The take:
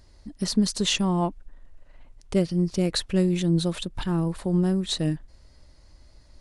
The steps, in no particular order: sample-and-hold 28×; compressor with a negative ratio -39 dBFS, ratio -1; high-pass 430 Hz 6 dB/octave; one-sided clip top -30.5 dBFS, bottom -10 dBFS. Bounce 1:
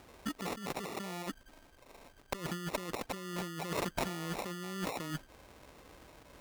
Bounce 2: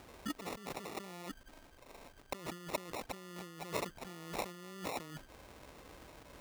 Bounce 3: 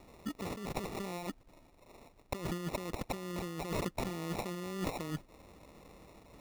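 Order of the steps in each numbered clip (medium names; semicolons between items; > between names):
sample-and-hold > high-pass > compressor with a negative ratio > one-sided clip; one-sided clip > sample-and-hold > compressor with a negative ratio > high-pass; one-sided clip > high-pass > compressor with a negative ratio > sample-and-hold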